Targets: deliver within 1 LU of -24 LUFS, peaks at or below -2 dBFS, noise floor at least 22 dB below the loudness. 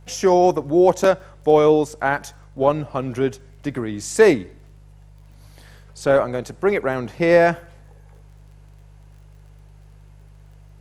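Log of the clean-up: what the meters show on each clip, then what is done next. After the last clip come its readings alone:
tick rate 21 per s; hum 50 Hz; highest harmonic 150 Hz; hum level -42 dBFS; loudness -19.0 LUFS; peak level -2.0 dBFS; loudness target -24.0 LUFS
-> de-click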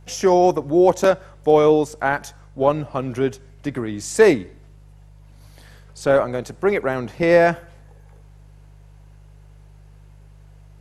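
tick rate 0 per s; hum 50 Hz; highest harmonic 150 Hz; hum level -43 dBFS
-> de-hum 50 Hz, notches 3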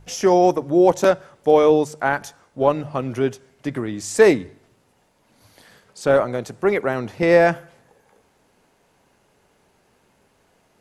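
hum not found; loudness -19.0 LUFS; peak level -2.0 dBFS; loudness target -24.0 LUFS
-> trim -5 dB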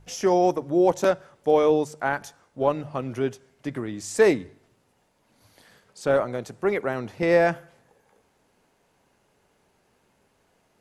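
loudness -24.0 LUFS; peak level -7.0 dBFS; noise floor -67 dBFS

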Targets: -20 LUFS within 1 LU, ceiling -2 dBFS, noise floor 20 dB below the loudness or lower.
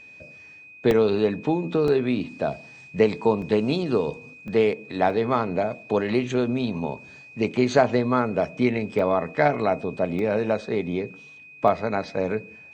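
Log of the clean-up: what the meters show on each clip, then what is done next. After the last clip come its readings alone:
dropouts 8; longest dropout 1.5 ms; steady tone 2.5 kHz; tone level -44 dBFS; loudness -24.0 LUFS; peak level -4.5 dBFS; loudness target -20.0 LUFS
-> interpolate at 0.91/1.88/3.42/4.48/5.10/8.99/10.19/11.68 s, 1.5 ms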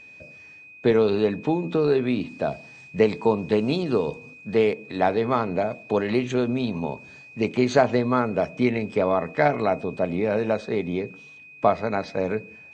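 dropouts 0; steady tone 2.5 kHz; tone level -44 dBFS
-> band-stop 2.5 kHz, Q 30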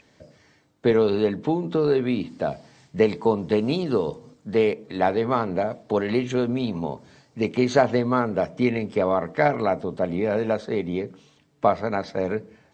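steady tone not found; loudness -24.0 LUFS; peak level -5.0 dBFS; loudness target -20.0 LUFS
-> trim +4 dB; peak limiter -2 dBFS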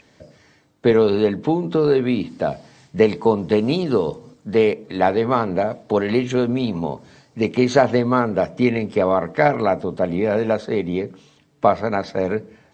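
loudness -20.0 LUFS; peak level -2.0 dBFS; noise floor -56 dBFS

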